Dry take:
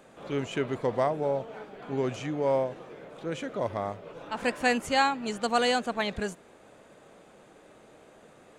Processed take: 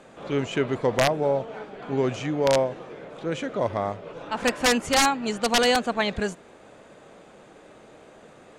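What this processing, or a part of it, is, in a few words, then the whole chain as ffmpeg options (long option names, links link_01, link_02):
overflowing digital effects unit: -af "aeval=exprs='(mod(6.68*val(0)+1,2)-1)/6.68':channel_layout=same,lowpass=8500,volume=5dB"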